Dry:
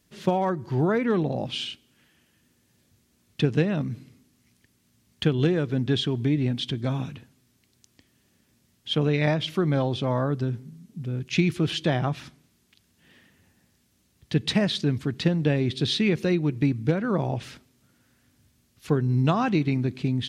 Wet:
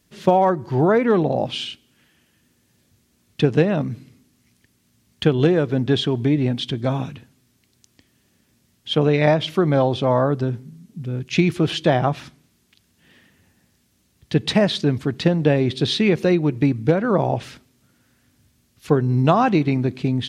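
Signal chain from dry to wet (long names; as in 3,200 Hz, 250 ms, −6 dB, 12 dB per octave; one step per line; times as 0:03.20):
dynamic equaliser 680 Hz, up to +7 dB, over −38 dBFS, Q 0.74
level +3 dB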